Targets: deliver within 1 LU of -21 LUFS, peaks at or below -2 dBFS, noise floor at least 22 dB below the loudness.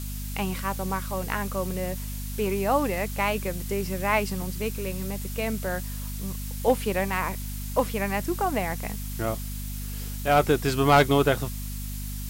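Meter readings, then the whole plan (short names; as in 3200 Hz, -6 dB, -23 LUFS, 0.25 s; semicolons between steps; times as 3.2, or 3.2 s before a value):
hum 50 Hz; harmonics up to 250 Hz; hum level -31 dBFS; noise floor -33 dBFS; noise floor target -49 dBFS; loudness -27.0 LUFS; peak -8.5 dBFS; loudness target -21.0 LUFS
-> notches 50/100/150/200/250 Hz; noise print and reduce 16 dB; gain +6 dB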